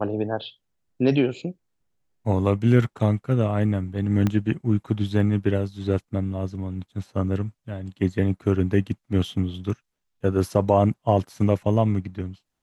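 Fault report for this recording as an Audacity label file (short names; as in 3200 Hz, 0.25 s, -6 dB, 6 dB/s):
4.270000	4.270000	pop -11 dBFS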